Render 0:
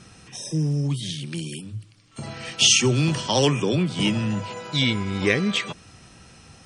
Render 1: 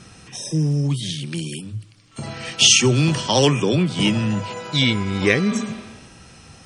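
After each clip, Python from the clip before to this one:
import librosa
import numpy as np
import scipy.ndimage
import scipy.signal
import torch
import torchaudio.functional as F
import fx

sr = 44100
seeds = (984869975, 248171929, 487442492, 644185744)

y = fx.spec_repair(x, sr, seeds[0], start_s=5.54, length_s=0.57, low_hz=210.0, high_hz=5300.0, source='both')
y = y * 10.0 ** (3.5 / 20.0)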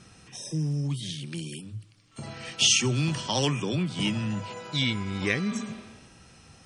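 y = fx.dynamic_eq(x, sr, hz=460.0, q=1.4, threshold_db=-30.0, ratio=4.0, max_db=-5)
y = y * 10.0 ** (-8.0 / 20.0)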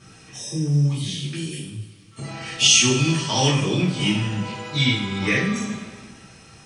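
y = fx.rev_double_slope(x, sr, seeds[1], early_s=0.54, late_s=2.0, knee_db=-16, drr_db=-7.5)
y = y * 10.0 ** (-1.5 / 20.0)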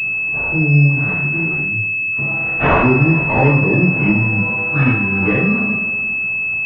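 y = fx.pwm(x, sr, carrier_hz=2600.0)
y = y * 10.0 ** (7.0 / 20.0)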